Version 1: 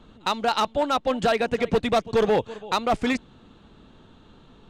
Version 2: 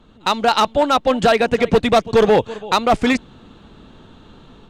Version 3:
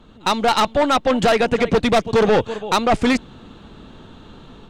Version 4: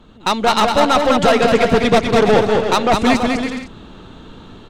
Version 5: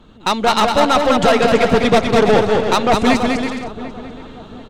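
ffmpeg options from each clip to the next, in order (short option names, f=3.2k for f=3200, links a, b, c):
-af "dynaudnorm=f=150:g=3:m=7.5dB"
-af "aeval=exprs='(tanh(5.01*val(0)+0.25)-tanh(0.25))/5.01':c=same,volume=3dB"
-af "aecho=1:1:200|330|414.5|469.4|505.1:0.631|0.398|0.251|0.158|0.1,volume=1.5dB"
-filter_complex "[0:a]asplit=2[a][b];[b]adelay=741,lowpass=f=1.5k:p=1,volume=-15dB,asplit=2[c][d];[d]adelay=741,lowpass=f=1.5k:p=1,volume=0.37,asplit=2[e][f];[f]adelay=741,lowpass=f=1.5k:p=1,volume=0.37[g];[a][c][e][g]amix=inputs=4:normalize=0"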